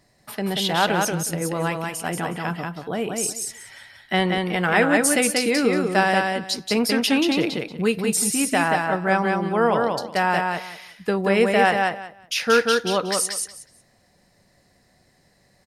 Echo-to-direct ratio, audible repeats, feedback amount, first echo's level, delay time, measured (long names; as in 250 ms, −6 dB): −3.5 dB, 3, 19%, −3.5 dB, 183 ms